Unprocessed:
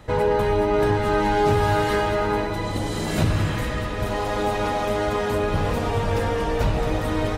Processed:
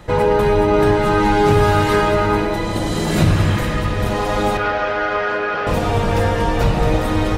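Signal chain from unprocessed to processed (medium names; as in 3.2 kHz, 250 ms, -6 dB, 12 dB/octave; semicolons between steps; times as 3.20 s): 4.57–5.67 s: cabinet simulation 490–4600 Hz, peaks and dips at 940 Hz -5 dB, 1.5 kHz +9 dB, 3.8 kHz -7 dB; reverberation RT60 1.8 s, pre-delay 6 ms, DRR 7 dB; trim +5 dB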